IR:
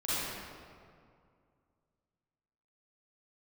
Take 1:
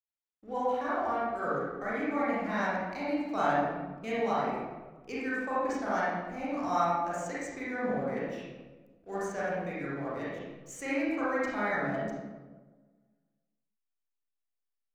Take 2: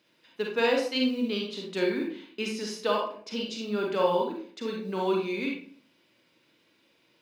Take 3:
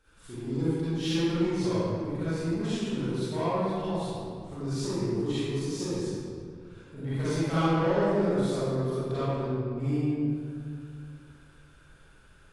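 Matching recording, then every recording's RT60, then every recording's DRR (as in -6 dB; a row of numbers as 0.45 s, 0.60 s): 3; 1.3 s, 0.50 s, 2.2 s; -9.5 dB, -1.0 dB, -12.5 dB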